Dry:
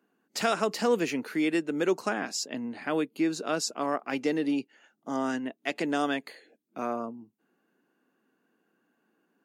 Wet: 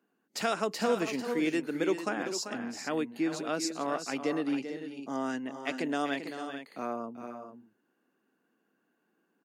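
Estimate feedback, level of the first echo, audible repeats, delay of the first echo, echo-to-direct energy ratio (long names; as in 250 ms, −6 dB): repeats not evenly spaced, −10.0 dB, 2, 389 ms, −7.0 dB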